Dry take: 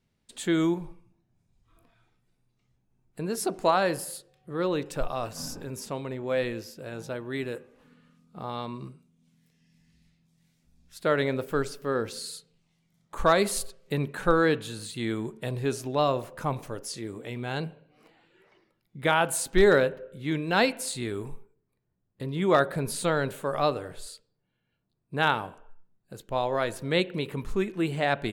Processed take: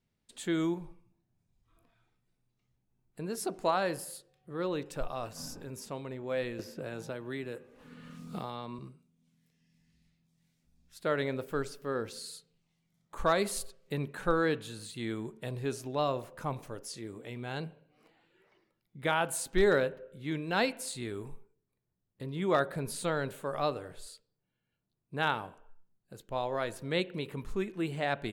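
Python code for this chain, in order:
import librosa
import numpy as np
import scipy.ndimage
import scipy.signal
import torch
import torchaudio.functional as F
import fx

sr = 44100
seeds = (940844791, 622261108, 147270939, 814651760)

y = fx.band_squash(x, sr, depth_pct=100, at=(6.59, 8.79))
y = y * 10.0 ** (-6.0 / 20.0)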